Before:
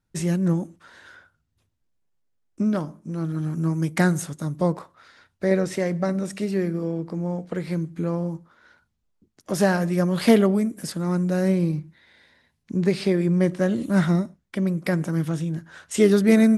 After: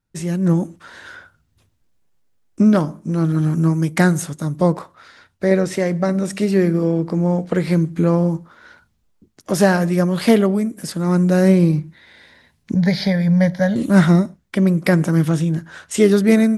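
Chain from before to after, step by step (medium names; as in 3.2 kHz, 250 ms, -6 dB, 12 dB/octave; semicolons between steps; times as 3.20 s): 12.74–13.76 s: static phaser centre 1.8 kHz, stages 8; level rider gain up to 11.5 dB; trim -1 dB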